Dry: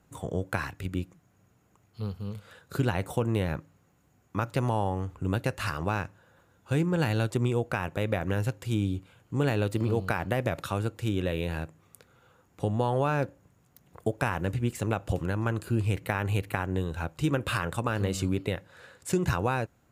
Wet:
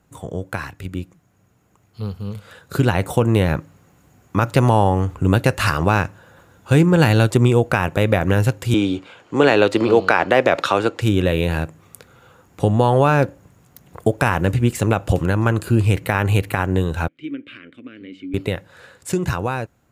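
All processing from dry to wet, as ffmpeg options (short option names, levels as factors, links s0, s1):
-filter_complex "[0:a]asettb=1/sr,asplit=3[s0][s1][s2];[s0]atrim=end=8.744[s3];[s1]atrim=start=8.74:end=11.01,asetpts=PTS-STARTPTS,afade=t=in:d=0.004:c=qsin,afade=t=out:st=2.266:d=0.004:c=qsin,acrossover=split=270 6500:gain=0.1 1 0.1[s4][s5][s6];[s4][s5][s6]amix=inputs=3:normalize=0,acontrast=39[s7];[s2]atrim=start=11.006[s8];[s3][s7]acrossfade=d=0.004:c1=hsin:c2=qsin[s9];[s9][s8]acrossfade=d=0.004:c1=qsin:c2=hsin,asettb=1/sr,asplit=3[s10][s11][s12];[s10]atrim=end=17.084[s13];[s11]atrim=start=17.08:end=18.34,asetpts=PTS-STARTPTS,afade=t=in:d=0.004:c=qsin,afade=t=out:st=1.256:d=0.004:c=qsin,asplit=3[s14][s15][s16];[s14]bandpass=f=270:t=q:w=8,volume=1[s17];[s15]bandpass=f=2290:t=q:w=8,volume=0.501[s18];[s16]bandpass=f=3010:t=q:w=8,volume=0.355[s19];[s17][s18][s19]amix=inputs=3:normalize=0,bass=f=250:g=-10,treble=f=4000:g=-13[s20];[s12]atrim=start=18.336[s21];[s13][s20]acrossfade=d=0.004:c1=hsin:c2=qsin[s22];[s22][s21]acrossfade=d=0.004:c1=qsin:c2=hsin,dynaudnorm=f=750:g=7:m=3.76,alimiter=level_in=1.68:limit=0.891:release=50:level=0:latency=1,volume=0.891"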